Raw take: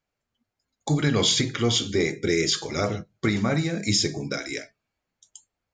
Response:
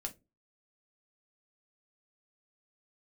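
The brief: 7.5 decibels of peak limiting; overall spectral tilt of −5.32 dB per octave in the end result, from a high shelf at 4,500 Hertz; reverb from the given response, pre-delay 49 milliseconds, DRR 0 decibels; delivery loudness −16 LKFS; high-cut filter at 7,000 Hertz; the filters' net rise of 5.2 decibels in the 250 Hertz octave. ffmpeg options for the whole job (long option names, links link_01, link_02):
-filter_complex "[0:a]lowpass=7000,equalizer=frequency=250:width_type=o:gain=7,highshelf=frequency=4500:gain=-9,alimiter=limit=-15.5dB:level=0:latency=1,asplit=2[link_01][link_02];[1:a]atrim=start_sample=2205,adelay=49[link_03];[link_02][link_03]afir=irnorm=-1:irlink=0,volume=1.5dB[link_04];[link_01][link_04]amix=inputs=2:normalize=0,volume=6.5dB"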